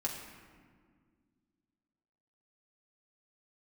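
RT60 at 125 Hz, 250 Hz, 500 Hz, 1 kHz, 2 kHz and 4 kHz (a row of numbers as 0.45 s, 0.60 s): 2.5 s, 2.8 s, 2.1 s, 1.7 s, 1.5 s, 1.0 s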